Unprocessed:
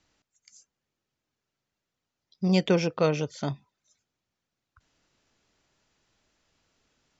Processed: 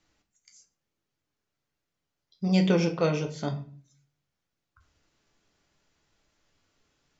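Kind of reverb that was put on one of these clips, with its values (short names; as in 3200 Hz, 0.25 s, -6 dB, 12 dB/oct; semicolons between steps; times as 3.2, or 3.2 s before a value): shoebox room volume 33 m³, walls mixed, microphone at 0.37 m; gain -2.5 dB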